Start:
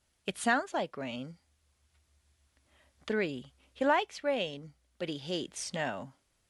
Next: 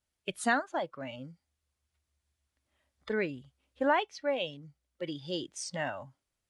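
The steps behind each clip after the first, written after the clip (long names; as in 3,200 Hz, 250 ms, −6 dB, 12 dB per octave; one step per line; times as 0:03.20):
noise reduction from a noise print of the clip's start 11 dB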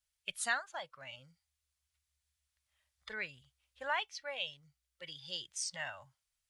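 guitar amp tone stack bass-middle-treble 10-0-10
level +2 dB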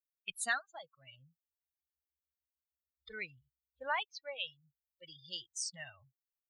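spectral dynamics exaggerated over time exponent 2
level +2 dB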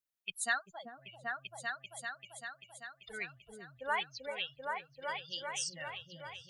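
echo whose low-pass opens from repeat to repeat 390 ms, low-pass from 400 Hz, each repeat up 2 octaves, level 0 dB
level +1 dB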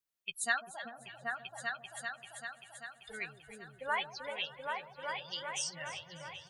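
double-tracking delay 13 ms −10.5 dB
delay that swaps between a low-pass and a high-pass 149 ms, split 810 Hz, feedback 65%, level −11.5 dB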